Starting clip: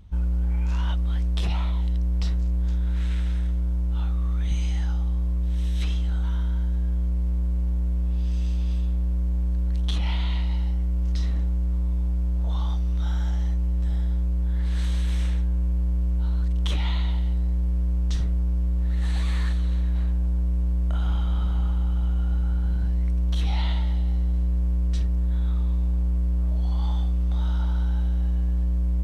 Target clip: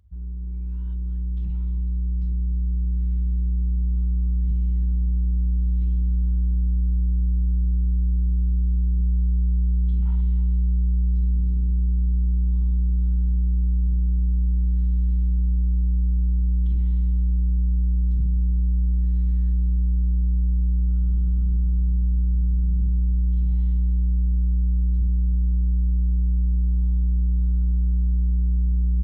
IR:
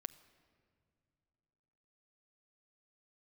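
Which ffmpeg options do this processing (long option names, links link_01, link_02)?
-filter_complex "[0:a]asettb=1/sr,asplit=3[link_01][link_02][link_03];[link_01]atrim=end=9.004[link_04];[link_02]atrim=start=9:end=11.4,asetpts=PTS-STARTPTS,afade=type=in:duration=0.004:curve=qsin,afade=type=out:start_time=2.396:duration=0.004:curve=qsin,acontrast=71[link_05];[link_03]atrim=start=11.396[link_06];[link_04][link_05]acrossfade=duration=0.004:curve1=hsin:curve2=qsin[link_07];[link_07][link_06]acrossfade=duration=0.004:curve1=qsin:curve2=hsin,aemphasis=mode=reproduction:type=75fm,afwtdn=0.0501,highpass=43,aecho=1:1:308:0.211,alimiter=limit=-23.5dB:level=0:latency=1:release=18,asubboost=boost=5:cutoff=240[link_08];[1:a]atrim=start_sample=2205,asetrate=57330,aresample=44100[link_09];[link_08][link_09]afir=irnorm=-1:irlink=0"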